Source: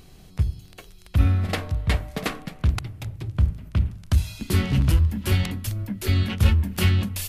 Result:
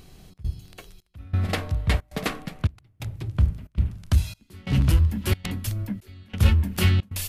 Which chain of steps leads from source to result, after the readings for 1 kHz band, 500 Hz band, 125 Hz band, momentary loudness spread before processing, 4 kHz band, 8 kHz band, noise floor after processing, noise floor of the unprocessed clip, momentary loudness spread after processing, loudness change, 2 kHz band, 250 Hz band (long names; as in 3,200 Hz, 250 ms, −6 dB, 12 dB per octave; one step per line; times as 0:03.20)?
−1.0 dB, −1.5 dB, −1.5 dB, 10 LU, −1.5 dB, −1.0 dB, −63 dBFS, −49 dBFS, 15 LU, −1.5 dB, −1.5 dB, −2.0 dB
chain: gate pattern "xxx.xxxxx...xxx" 135 BPM −24 dB